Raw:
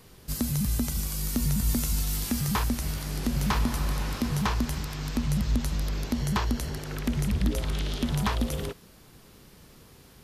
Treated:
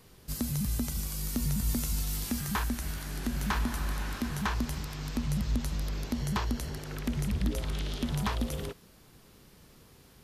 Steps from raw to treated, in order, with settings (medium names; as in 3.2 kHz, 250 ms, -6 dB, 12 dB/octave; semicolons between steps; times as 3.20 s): 2.38–4.54 s: graphic EQ with 31 bands 125 Hz -12 dB, 500 Hz -5 dB, 1.6 kHz +6 dB, 5 kHz -3 dB; trim -4 dB